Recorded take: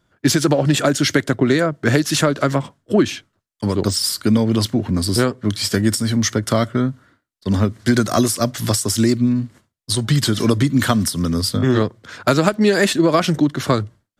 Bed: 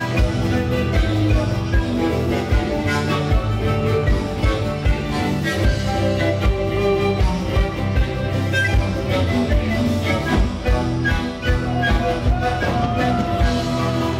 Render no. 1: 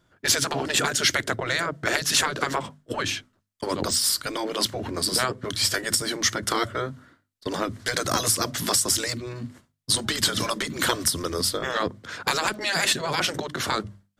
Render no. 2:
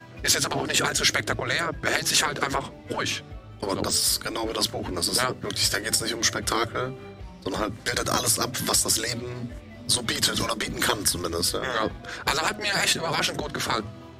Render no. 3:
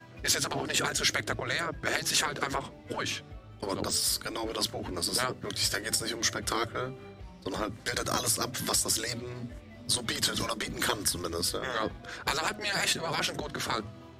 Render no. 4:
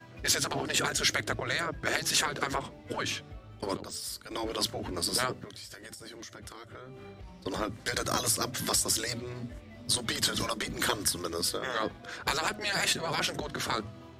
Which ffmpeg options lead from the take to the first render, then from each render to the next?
-af "afftfilt=real='re*lt(hypot(re,im),0.501)':imag='im*lt(hypot(re,im),0.501)':win_size=1024:overlap=0.75,bandreject=f=50:t=h:w=6,bandreject=f=100:t=h:w=6,bandreject=f=150:t=h:w=6,bandreject=f=200:t=h:w=6,bandreject=f=250:t=h:w=6"
-filter_complex "[1:a]volume=0.0668[s0];[0:a][s0]amix=inputs=2:normalize=0"
-af "volume=0.531"
-filter_complex "[0:a]asplit=3[s0][s1][s2];[s0]afade=t=out:st=5.43:d=0.02[s3];[s1]acompressor=threshold=0.00891:ratio=20:attack=3.2:release=140:knee=1:detection=peak,afade=t=in:st=5.43:d=0.02,afade=t=out:st=7.32:d=0.02[s4];[s2]afade=t=in:st=7.32:d=0.02[s5];[s3][s4][s5]amix=inputs=3:normalize=0,asettb=1/sr,asplit=3[s6][s7][s8];[s6]atrim=end=11.124[s9];[s7]atrim=start=11.12:end=12.2,asetpts=PTS-STARTPTS,afade=t=in:d=0.004:c=qsin,afade=t=out:st=1.076:d=0.004:c=qsin,highpass=f=130:p=1[s10];[s8]atrim=start=12.196[s11];[s9][s10]acrossfade=d=0.004:c1=hsin:c2=qsin[s12];[s12][s11]acrossfade=d=0.004:c1=qsin:c2=hsin,asplit=3[s13][s14][s15];[s13]atrim=end=3.772[s16];[s14]atrim=start=3.768:end=4.312,asetpts=PTS-STARTPTS,volume=0.316[s17];[s15]atrim=start=4.308[s18];[s16][s17]acrossfade=d=0.004:c1=hsin:c2=hsin[s19];[s19][s18]acrossfade=d=0.004:c1=hsin:c2=hsin"

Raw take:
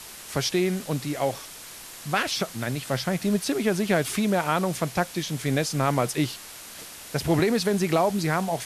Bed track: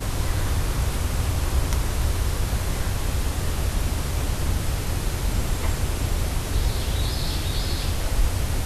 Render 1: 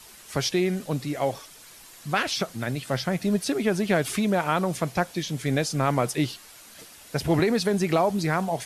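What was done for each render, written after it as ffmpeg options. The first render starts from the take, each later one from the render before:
-af "afftdn=nr=8:nf=-42"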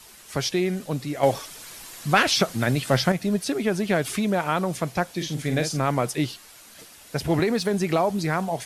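-filter_complex "[0:a]asettb=1/sr,asplit=3[s0][s1][s2];[s0]atrim=end=1.234[s3];[s1]atrim=start=1.23:end=3.12,asetpts=PTS-STARTPTS,afade=t=in:d=0.004:c=qsin,afade=t=out:st=1.886:d=0.004:c=qsin,acontrast=69[s4];[s2]atrim=start=3.116[s5];[s3][s4]acrossfade=d=0.004:c1=hsin:c2=qsin[s6];[s6][s5]acrossfade=d=0.004:c1=qsin:c2=hsin,asettb=1/sr,asplit=3[s7][s8][s9];[s7]atrim=end=5.164[s10];[s8]atrim=start=5.16:end=5.8,asetpts=PTS-STARTPTS,afade=t=in:d=0.004:c=qsin,afade=t=out:st=0.636:d=0.004:c=qsin,asplit=2[s11][s12];[s12]adelay=46,volume=0.447[s13];[s11][s13]amix=inputs=2:normalize=0,atrim=end_sample=28224[s14];[s9]atrim=start=5.796[s15];[s10][s14]acrossfade=d=0.004:c1=hsin:c2=qsin[s16];[s16][s15]acrossfade=d=0.004:c1=qsin:c2=hsin,asettb=1/sr,asplit=3[s17][s18][s19];[s17]atrim=end=7.274[s20];[s18]atrim=start=7.27:end=7.71,asetpts=PTS-STARTPTS,afade=t=in:d=0.004:c=qsin,afade=t=out:st=0.436:d=0.004:c=qsin,aeval=exprs='sgn(val(0))*max(abs(val(0))-0.00355,0)':c=same[s21];[s19]atrim=start=7.706[s22];[s20][s21]acrossfade=d=0.004:c1=hsin:c2=qsin[s23];[s23][s22]acrossfade=d=0.004:c1=qsin:c2=hsin"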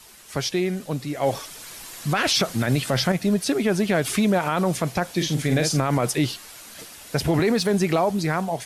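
-af "dynaudnorm=f=480:g=7:m=2.11,alimiter=limit=0.266:level=0:latency=1:release=36"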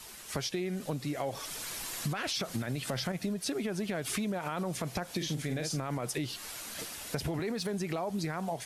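-af "alimiter=limit=0.133:level=0:latency=1:release=226,acompressor=threshold=0.0282:ratio=6"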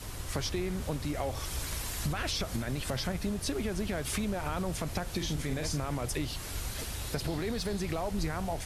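-filter_complex "[1:a]volume=0.168[s0];[0:a][s0]amix=inputs=2:normalize=0"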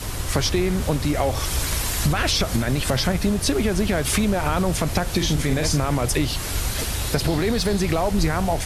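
-af "volume=3.98"

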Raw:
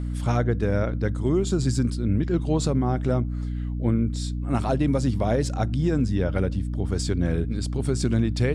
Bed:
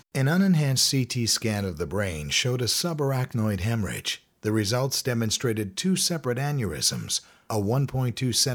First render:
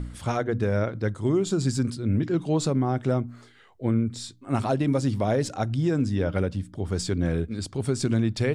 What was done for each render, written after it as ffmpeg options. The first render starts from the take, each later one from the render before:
-af "bandreject=f=60:t=h:w=4,bandreject=f=120:t=h:w=4,bandreject=f=180:t=h:w=4,bandreject=f=240:t=h:w=4,bandreject=f=300:t=h:w=4"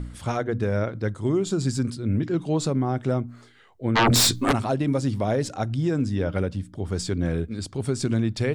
-filter_complex "[0:a]asplit=3[s0][s1][s2];[s0]afade=t=out:st=3.95:d=0.02[s3];[s1]aeval=exprs='0.188*sin(PI/2*10*val(0)/0.188)':c=same,afade=t=in:st=3.95:d=0.02,afade=t=out:st=4.51:d=0.02[s4];[s2]afade=t=in:st=4.51:d=0.02[s5];[s3][s4][s5]amix=inputs=3:normalize=0"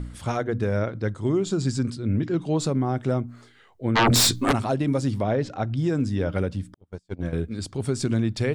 -filter_complex "[0:a]asettb=1/sr,asplit=3[s0][s1][s2];[s0]atrim=end=0.794[s3];[s1]atrim=start=0.79:end=2.59,asetpts=PTS-STARTPTS,afade=t=in:d=0.004:c=qsin,afade=t=out:st=1.796:d=0.004:c=qsin,lowpass=8400[s4];[s2]atrim=start=2.586[s5];[s3][s4]acrossfade=d=0.004:c1=hsin:c2=qsin[s6];[s6][s5]acrossfade=d=0.004:c1=qsin:c2=hsin,asettb=1/sr,asplit=3[s7][s8][s9];[s7]atrim=end=5.224[s10];[s8]atrim=start=5.22:end=5.77,asetpts=PTS-STARTPTS,afade=t=in:d=0.004:c=qsin,afade=t=out:st=0.546:d=0.004:c=qsin,lowpass=3600[s11];[s9]atrim=start=5.766[s12];[s10][s11]acrossfade=d=0.004:c1=hsin:c2=qsin[s13];[s13][s12]acrossfade=d=0.004:c1=qsin:c2=hsin,asettb=1/sr,asplit=3[s14][s15][s16];[s14]atrim=end=6.744[s17];[s15]atrim=start=6.74:end=7.33,asetpts=PTS-STARTPTS,afade=t=in:d=0.004:c=qsin,afade=t=out:st=0.586:d=0.004:c=qsin,agate=range=0.00794:threshold=0.0631:ratio=16:release=100:detection=peak[s18];[s16]atrim=start=7.326[s19];[s17][s18]acrossfade=d=0.004:c1=hsin:c2=qsin[s20];[s20][s19]acrossfade=d=0.004:c1=qsin:c2=hsin"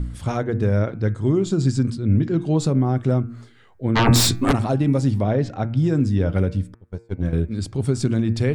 -af "lowshelf=f=270:g=8.5,bandreject=f=115.4:t=h:w=4,bandreject=f=230.8:t=h:w=4,bandreject=f=346.2:t=h:w=4,bandreject=f=461.6:t=h:w=4,bandreject=f=577:t=h:w=4,bandreject=f=692.4:t=h:w=4,bandreject=f=807.8:t=h:w=4,bandreject=f=923.2:t=h:w=4,bandreject=f=1038.6:t=h:w=4,bandreject=f=1154:t=h:w=4,bandreject=f=1269.4:t=h:w=4,bandreject=f=1384.8:t=h:w=4,bandreject=f=1500.2:t=h:w=4,bandreject=f=1615.6:t=h:w=4,bandreject=f=1731:t=h:w=4,bandreject=f=1846.4:t=h:w=4,bandreject=f=1961.8:t=h:w=4,bandreject=f=2077.2:t=h:w=4,bandreject=f=2192.6:t=h:w=4,bandreject=f=2308:t=h:w=4,bandreject=f=2423.4:t=h:w=4,bandreject=f=2538.8:t=h:w=4,bandreject=f=2654.2:t=h:w=4"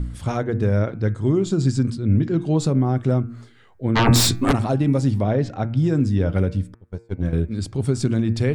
-af anull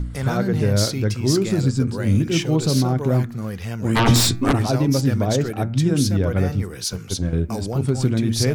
-filter_complex "[1:a]volume=0.708[s0];[0:a][s0]amix=inputs=2:normalize=0"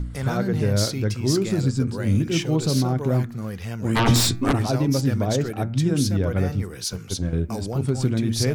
-af "volume=0.75"

